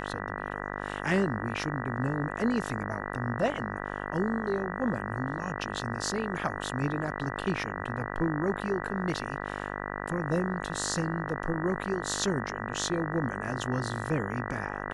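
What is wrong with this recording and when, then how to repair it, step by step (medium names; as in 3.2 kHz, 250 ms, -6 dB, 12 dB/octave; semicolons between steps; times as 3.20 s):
buzz 50 Hz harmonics 39 -36 dBFS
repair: de-hum 50 Hz, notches 39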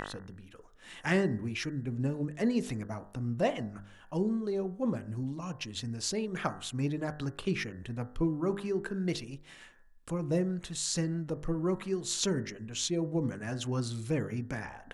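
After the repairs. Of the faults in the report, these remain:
nothing left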